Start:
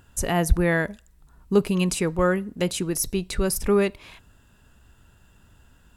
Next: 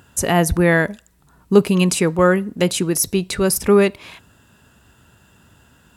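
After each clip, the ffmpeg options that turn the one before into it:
-af "highpass=100,volume=7dB"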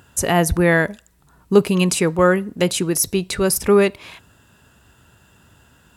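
-af "equalizer=f=220:w=1.9:g=-2.5"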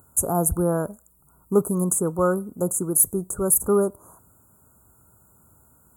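-af "asuperstop=centerf=3100:order=20:qfactor=0.61,aexciter=amount=2.7:drive=8.1:freq=8.5k,volume=-6dB"

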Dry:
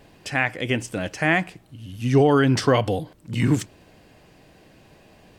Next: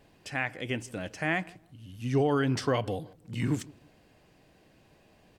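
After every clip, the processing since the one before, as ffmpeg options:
-filter_complex "[0:a]asplit=2[a][b];[b]adelay=161,lowpass=f=950:p=1,volume=-21.5dB,asplit=2[c][d];[d]adelay=161,lowpass=f=950:p=1,volume=0.31[e];[a][c][e]amix=inputs=3:normalize=0,volume=-9dB"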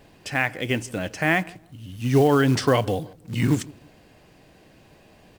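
-af "acrusher=bits=6:mode=log:mix=0:aa=0.000001,volume=8dB"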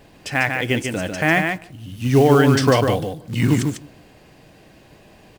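-af "aecho=1:1:147:0.531,volume=3.5dB"

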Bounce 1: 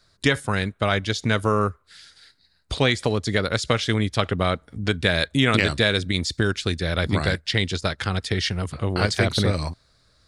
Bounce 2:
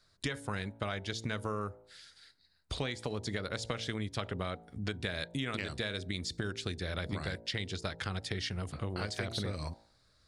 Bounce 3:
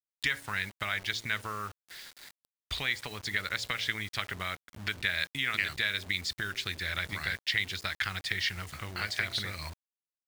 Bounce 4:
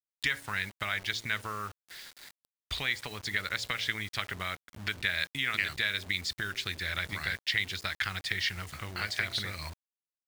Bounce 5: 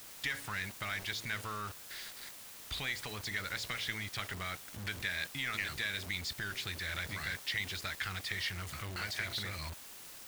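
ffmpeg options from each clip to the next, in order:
-af "bandreject=f=56.19:t=h:w=4,bandreject=f=112.38:t=h:w=4,bandreject=f=168.57:t=h:w=4,bandreject=f=224.76:t=h:w=4,bandreject=f=280.95:t=h:w=4,bandreject=f=337.14:t=h:w=4,bandreject=f=393.33:t=h:w=4,bandreject=f=449.52:t=h:w=4,bandreject=f=505.71:t=h:w=4,bandreject=f=561.9:t=h:w=4,bandreject=f=618.09:t=h:w=4,bandreject=f=674.28:t=h:w=4,bandreject=f=730.47:t=h:w=4,bandreject=f=786.66:t=h:w=4,bandreject=f=842.85:t=h:w=4,bandreject=f=899.04:t=h:w=4,bandreject=f=955.23:t=h:w=4,acompressor=threshold=-25dB:ratio=6,volume=-7.5dB"
-af "equalizer=f=125:t=o:w=1:g=-5,equalizer=f=250:t=o:w=1:g=-6,equalizer=f=500:t=o:w=1:g=-8,equalizer=f=2k:t=o:w=1:g=12,equalizer=f=4k:t=o:w=1:g=4,acrusher=bits=7:mix=0:aa=0.000001"
-af anull
-af "aeval=exprs='val(0)+0.5*0.0335*sgn(val(0))':c=same,volume=-9dB"

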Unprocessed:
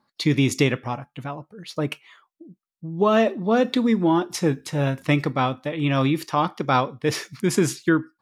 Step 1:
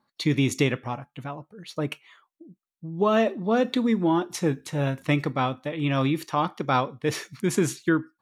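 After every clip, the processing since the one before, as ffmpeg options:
-af "bandreject=f=5k:w=9.5,volume=-3dB"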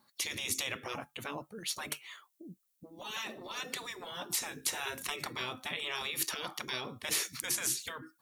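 -af "crystalizer=i=3.5:c=0,acompressor=threshold=-23dB:ratio=16,afftfilt=real='re*lt(hypot(re,im),0.0794)':imag='im*lt(hypot(re,im),0.0794)':win_size=1024:overlap=0.75"

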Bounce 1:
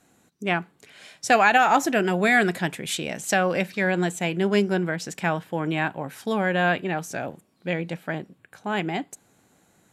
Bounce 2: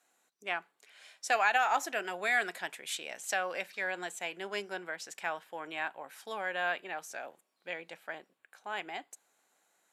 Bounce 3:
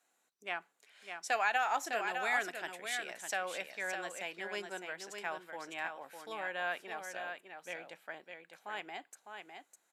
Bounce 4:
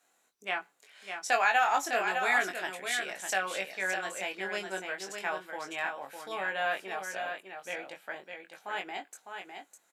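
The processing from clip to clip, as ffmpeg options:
-af "highpass=650,volume=-8.5dB"
-af "aecho=1:1:605:0.473,volume=-4dB"
-filter_complex "[0:a]asplit=2[a][b];[b]adelay=21,volume=-4.5dB[c];[a][c]amix=inputs=2:normalize=0,volume=4.5dB"

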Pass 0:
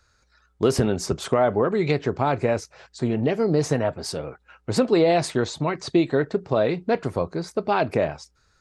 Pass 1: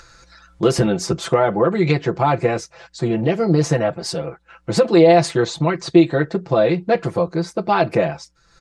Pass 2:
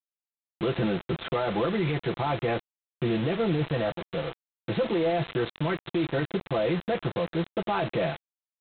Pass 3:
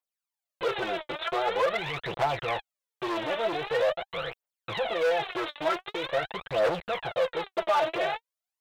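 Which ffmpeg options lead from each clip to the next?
-af "lowpass=9.4k,aecho=1:1:5.9:1,acompressor=mode=upward:threshold=-38dB:ratio=2.5,volume=2dB"
-af "alimiter=limit=-12.5dB:level=0:latency=1:release=14,aresample=8000,acrusher=bits=4:mix=0:aa=0.000001,aresample=44100,volume=-6dB"
-af "aphaser=in_gain=1:out_gain=1:delay=3.5:decay=0.75:speed=0.45:type=triangular,asoftclip=type=hard:threshold=-21.5dB,lowshelf=f=390:t=q:w=1.5:g=-12.5"

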